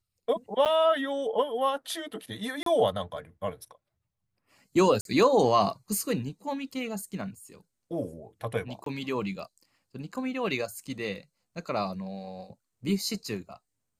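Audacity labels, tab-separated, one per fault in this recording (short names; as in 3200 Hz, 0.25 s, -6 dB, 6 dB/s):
0.650000	0.660000	gap 8.6 ms
2.630000	2.660000	gap 33 ms
5.010000	5.050000	gap 42 ms
8.840000	8.860000	gap 23 ms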